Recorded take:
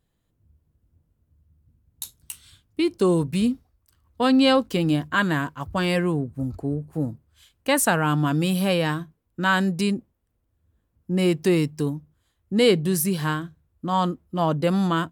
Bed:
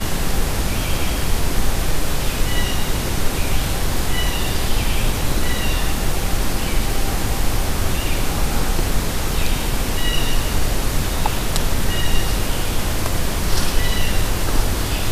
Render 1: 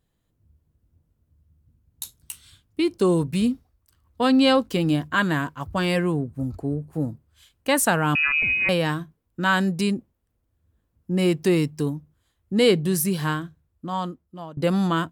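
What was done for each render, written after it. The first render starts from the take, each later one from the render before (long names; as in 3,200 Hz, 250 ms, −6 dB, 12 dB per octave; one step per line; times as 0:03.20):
0:08.15–0:08.69: voice inversion scrambler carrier 2,700 Hz
0:13.38–0:14.57: fade out, to −22 dB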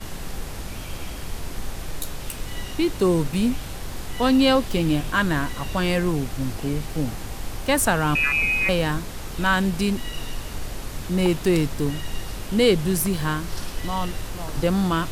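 mix in bed −12.5 dB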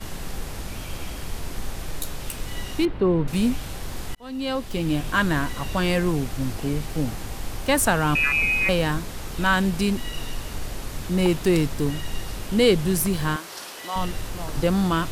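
0:02.85–0:03.28: high-frequency loss of the air 440 metres
0:04.15–0:05.15: fade in
0:13.36–0:13.96: high-pass filter 460 Hz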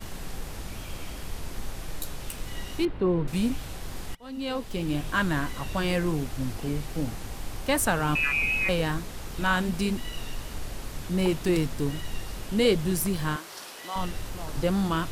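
pitch vibrato 2.6 Hz 28 cents
flanger 1.4 Hz, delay 0.2 ms, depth 7.9 ms, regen −77%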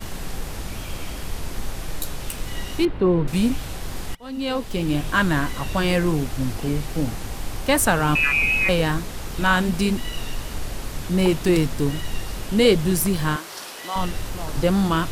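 level +6 dB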